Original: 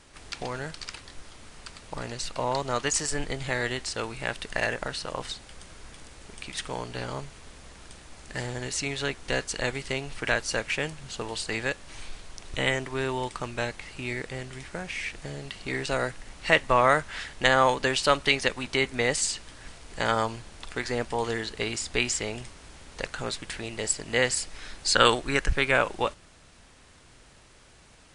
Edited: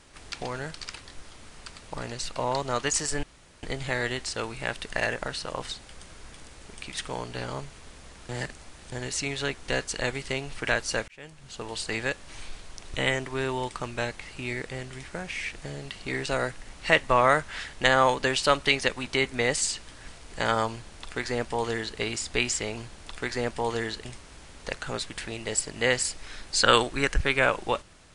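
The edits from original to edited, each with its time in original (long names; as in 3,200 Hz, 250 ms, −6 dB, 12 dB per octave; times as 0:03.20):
0:03.23: splice in room tone 0.40 s
0:07.89–0:08.52: reverse
0:10.68–0:11.44: fade in
0:20.31–0:21.59: duplicate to 0:22.37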